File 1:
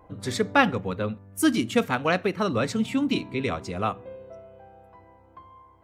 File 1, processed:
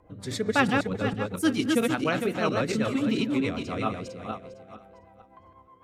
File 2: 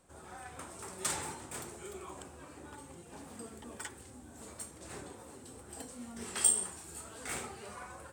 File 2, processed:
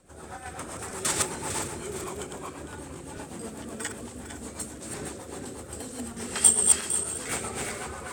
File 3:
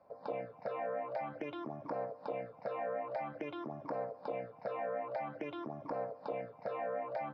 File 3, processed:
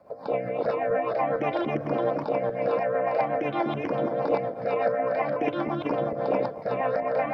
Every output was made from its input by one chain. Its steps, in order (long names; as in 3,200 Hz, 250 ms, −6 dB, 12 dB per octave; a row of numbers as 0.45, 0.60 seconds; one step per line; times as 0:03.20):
feedback delay that plays each chunk backwards 227 ms, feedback 46%, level −1 dB
rotating-speaker cabinet horn 8 Hz
loudness normalisation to −27 LKFS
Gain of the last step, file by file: −2.0, +9.0, +13.5 decibels